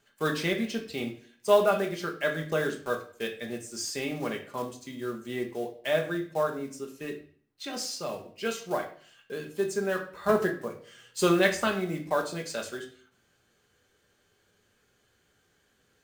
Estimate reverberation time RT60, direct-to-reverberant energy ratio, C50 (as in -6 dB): 0.50 s, 1.5 dB, 10.0 dB